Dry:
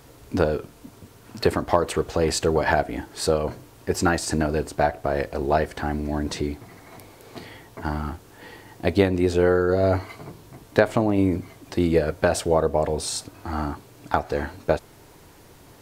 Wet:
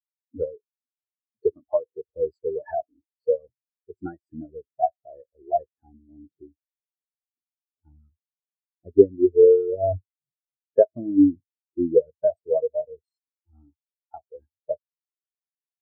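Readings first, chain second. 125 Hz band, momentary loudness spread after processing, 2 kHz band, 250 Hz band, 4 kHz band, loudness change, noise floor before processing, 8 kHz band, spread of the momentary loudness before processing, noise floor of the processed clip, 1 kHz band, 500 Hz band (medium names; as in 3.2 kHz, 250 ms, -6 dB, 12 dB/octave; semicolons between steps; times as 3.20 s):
-14.5 dB, 21 LU, under -25 dB, -2.0 dB, under -40 dB, +1.0 dB, -50 dBFS, under -40 dB, 19 LU, under -85 dBFS, -6.5 dB, +1.0 dB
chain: spectral contrast expander 4:1; trim +3 dB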